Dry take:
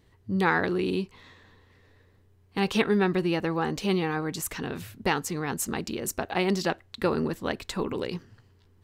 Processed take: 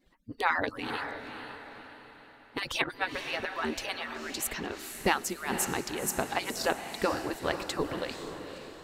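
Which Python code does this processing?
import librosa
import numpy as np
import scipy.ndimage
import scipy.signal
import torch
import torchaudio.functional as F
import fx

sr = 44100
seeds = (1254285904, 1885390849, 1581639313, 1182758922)

y = fx.hpss_only(x, sr, part='percussive')
y = fx.echo_diffused(y, sr, ms=499, feedback_pct=46, wet_db=-8.0)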